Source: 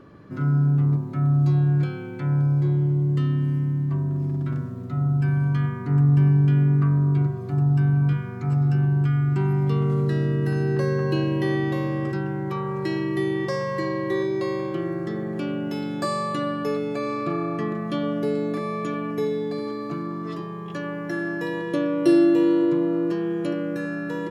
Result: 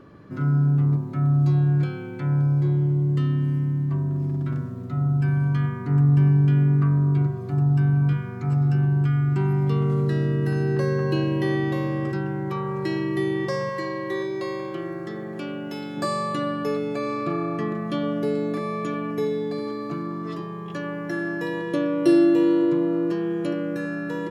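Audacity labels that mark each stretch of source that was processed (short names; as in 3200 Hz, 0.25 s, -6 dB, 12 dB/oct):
13.690000	15.970000	low shelf 360 Hz -7.5 dB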